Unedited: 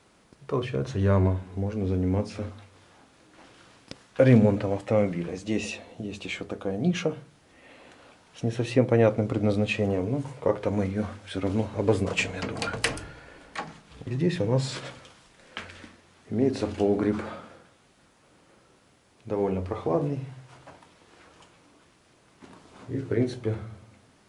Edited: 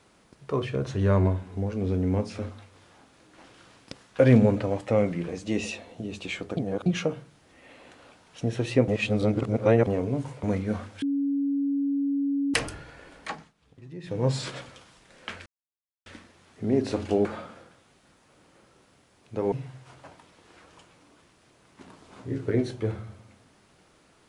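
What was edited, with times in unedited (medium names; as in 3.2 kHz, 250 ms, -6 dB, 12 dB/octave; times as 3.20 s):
6.57–6.86 s: reverse
8.88–9.87 s: reverse
10.43–10.72 s: delete
11.31–12.83 s: bleep 280 Hz -23 dBFS
13.57–14.55 s: dip -16 dB, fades 0.24 s
15.75 s: insert silence 0.60 s
16.94–17.19 s: delete
19.46–20.15 s: delete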